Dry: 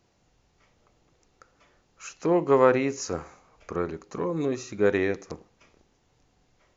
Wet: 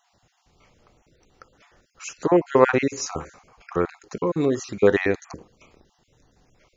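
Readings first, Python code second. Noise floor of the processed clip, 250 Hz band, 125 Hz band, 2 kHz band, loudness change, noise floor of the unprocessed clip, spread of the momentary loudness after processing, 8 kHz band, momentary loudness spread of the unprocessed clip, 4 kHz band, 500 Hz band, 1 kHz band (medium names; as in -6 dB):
-68 dBFS, +3.5 dB, +3.5 dB, +5.0 dB, +3.5 dB, -68 dBFS, 13 LU, no reading, 21 LU, +5.0 dB, +3.0 dB, +3.0 dB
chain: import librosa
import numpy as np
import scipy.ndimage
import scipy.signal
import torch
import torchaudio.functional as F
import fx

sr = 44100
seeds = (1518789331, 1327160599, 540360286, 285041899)

y = fx.spec_dropout(x, sr, seeds[0], share_pct=30)
y = y * 10.0 ** (6.0 / 20.0)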